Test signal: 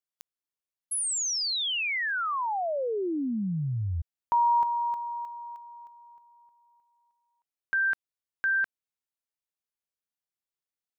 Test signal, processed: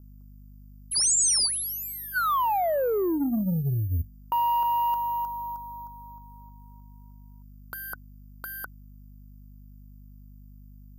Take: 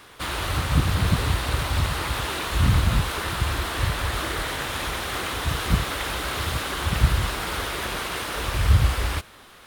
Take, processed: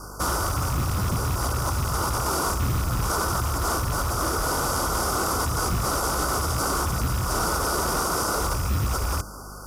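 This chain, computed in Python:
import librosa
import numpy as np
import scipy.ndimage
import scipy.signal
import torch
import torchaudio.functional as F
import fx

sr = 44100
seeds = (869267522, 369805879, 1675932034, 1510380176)

p1 = fx.rattle_buzz(x, sr, strikes_db=-25.0, level_db=-20.0)
p2 = fx.dynamic_eq(p1, sr, hz=120.0, q=5.2, threshold_db=-39.0, ratio=4.0, max_db=4)
p3 = fx.over_compress(p2, sr, threshold_db=-29.0, ratio=-0.5)
p4 = p2 + F.gain(torch.from_numpy(p3), 1.0).numpy()
p5 = fx.hum_notches(p4, sr, base_hz=50, count=6)
p6 = fx.add_hum(p5, sr, base_hz=50, snr_db=22)
p7 = (np.kron(p6[::3], np.eye(3)[0]) * 3)[:len(p6)]
p8 = scipy.signal.sosfilt(scipy.signal.ellip(5, 1.0, 40, [1500.0, 4600.0], 'bandstop', fs=sr, output='sos'), p7)
p9 = 10.0 ** (-13.0 / 20.0) * np.tanh(p8 / 10.0 ** (-13.0 / 20.0))
p10 = scipy.signal.sosfilt(scipy.signal.butter(4, 10000.0, 'lowpass', fs=sr, output='sos'), p9)
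y = fx.peak_eq(p10, sr, hz=2600.0, db=-3.0, octaves=0.62)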